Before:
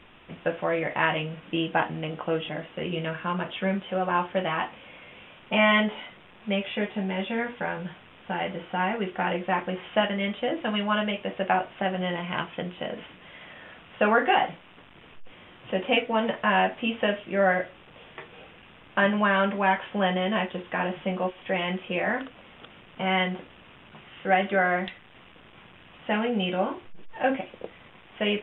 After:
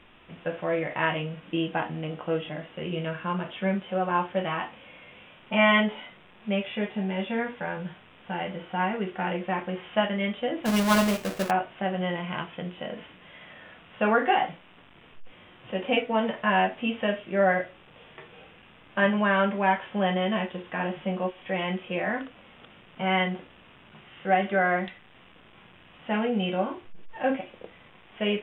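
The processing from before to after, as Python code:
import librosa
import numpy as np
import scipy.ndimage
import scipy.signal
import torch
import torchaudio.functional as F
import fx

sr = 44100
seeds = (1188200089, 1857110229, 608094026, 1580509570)

y = fx.halfwave_hold(x, sr, at=(10.65, 11.49), fade=0.02)
y = fx.hpss(y, sr, part='harmonic', gain_db=7)
y = F.gain(torch.from_numpy(y), -6.5).numpy()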